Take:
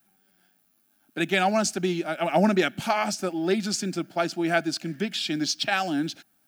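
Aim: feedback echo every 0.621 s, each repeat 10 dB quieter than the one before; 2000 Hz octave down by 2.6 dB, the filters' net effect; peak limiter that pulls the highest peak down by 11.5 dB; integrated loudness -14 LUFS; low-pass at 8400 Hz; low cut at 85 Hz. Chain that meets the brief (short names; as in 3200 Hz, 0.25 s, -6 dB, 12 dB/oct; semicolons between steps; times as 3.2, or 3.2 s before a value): HPF 85 Hz; LPF 8400 Hz; bell 2000 Hz -3.5 dB; limiter -21 dBFS; feedback echo 0.621 s, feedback 32%, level -10 dB; gain +16 dB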